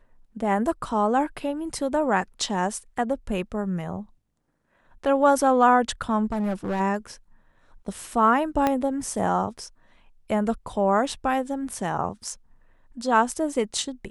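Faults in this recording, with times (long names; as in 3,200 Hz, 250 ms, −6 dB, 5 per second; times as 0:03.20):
0:06.25–0:06.81: clipping −22.5 dBFS
0:08.67: click −9 dBFS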